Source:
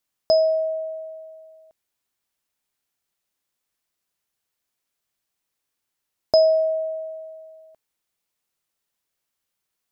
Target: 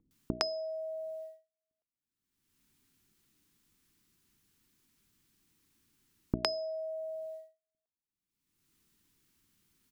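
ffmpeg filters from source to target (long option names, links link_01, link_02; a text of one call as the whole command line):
ffmpeg -i in.wav -filter_complex "[0:a]agate=range=-56dB:threshold=-38dB:ratio=16:detection=peak,acompressor=threshold=-32dB:ratio=5,lowshelf=frequency=430:width_type=q:width=1.5:gain=12,acrossover=split=470[link_01][link_02];[link_02]adelay=110[link_03];[link_01][link_03]amix=inputs=2:normalize=0,acompressor=mode=upward:threshold=-38dB:ratio=2.5,equalizer=frequency=620:width_type=o:width=0.46:gain=-9.5,bandreject=frequency=60:width_type=h:width=6,bandreject=frequency=120:width_type=h:width=6,bandreject=frequency=180:width_type=h:width=6,bandreject=frequency=240:width_type=h:width=6,bandreject=frequency=300:width_type=h:width=6,bandreject=frequency=360:width_type=h:width=6,bandreject=frequency=420:width_type=h:width=6,volume=7dB" out.wav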